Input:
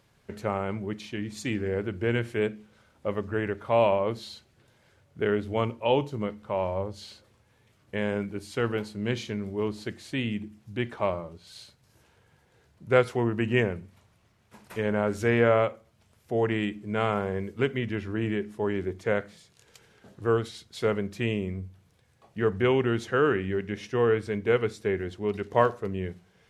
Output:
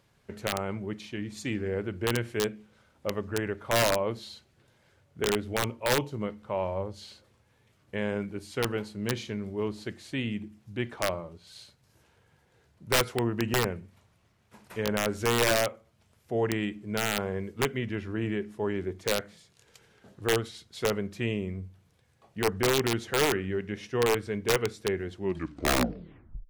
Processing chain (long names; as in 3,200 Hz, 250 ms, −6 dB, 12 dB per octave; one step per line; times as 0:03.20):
turntable brake at the end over 1.33 s
wrap-around overflow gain 15 dB
level −2 dB